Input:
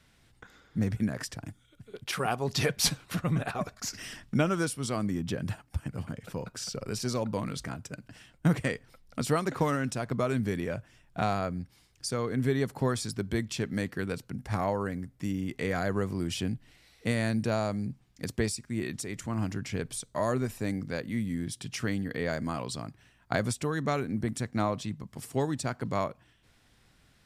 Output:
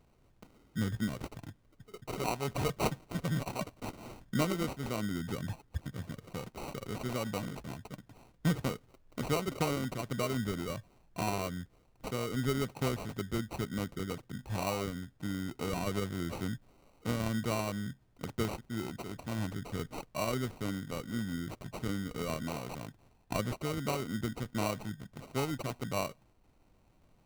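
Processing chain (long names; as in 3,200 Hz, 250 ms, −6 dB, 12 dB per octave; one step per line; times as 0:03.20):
sample-rate reduction 1,700 Hz, jitter 0%
background noise brown −64 dBFS
level −4.5 dB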